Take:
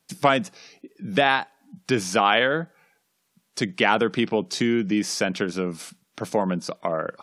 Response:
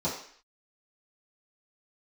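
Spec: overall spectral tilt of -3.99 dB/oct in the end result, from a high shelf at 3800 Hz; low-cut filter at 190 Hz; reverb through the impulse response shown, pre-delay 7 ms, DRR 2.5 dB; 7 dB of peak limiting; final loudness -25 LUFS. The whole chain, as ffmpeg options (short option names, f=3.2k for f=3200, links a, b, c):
-filter_complex "[0:a]highpass=190,highshelf=f=3.8k:g=4,alimiter=limit=-11dB:level=0:latency=1,asplit=2[a][b];[1:a]atrim=start_sample=2205,adelay=7[c];[b][c]afir=irnorm=-1:irlink=0,volume=-11dB[d];[a][d]amix=inputs=2:normalize=0,volume=-2.5dB"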